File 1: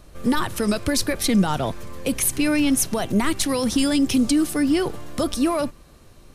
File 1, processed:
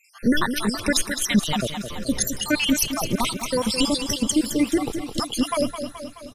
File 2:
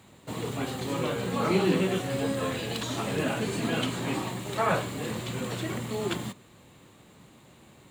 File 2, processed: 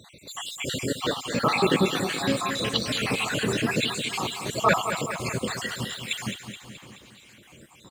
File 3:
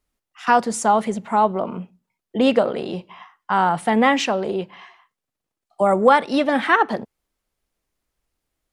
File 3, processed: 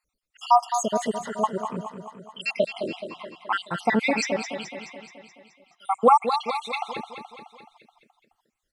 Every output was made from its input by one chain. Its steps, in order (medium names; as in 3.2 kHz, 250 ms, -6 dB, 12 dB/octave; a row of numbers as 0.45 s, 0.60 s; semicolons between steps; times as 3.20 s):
random holes in the spectrogram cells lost 68%; peaking EQ 3.9 kHz +7.5 dB 3 oct; on a send: feedback delay 213 ms, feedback 58%, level -9 dB; on the sum: peak normalisation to -6 dBFS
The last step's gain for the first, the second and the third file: +1.0 dB, +5.5 dB, -2.5 dB